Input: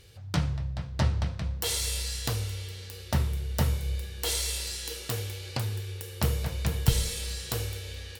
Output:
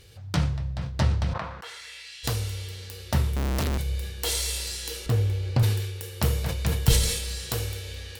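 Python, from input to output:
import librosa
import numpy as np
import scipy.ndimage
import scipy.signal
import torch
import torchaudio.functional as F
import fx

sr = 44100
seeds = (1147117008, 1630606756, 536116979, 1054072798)

y = fx.bandpass_q(x, sr, hz=fx.line((1.32, 920.0), (2.23, 2800.0)), q=2.1, at=(1.32, 2.23), fade=0.02)
y = fx.schmitt(y, sr, flips_db=-39.5, at=(3.36, 3.78))
y = fx.tilt_eq(y, sr, slope=-3.0, at=(5.06, 5.63))
y = fx.sustainer(y, sr, db_per_s=53.0)
y = y * librosa.db_to_amplitude(2.0)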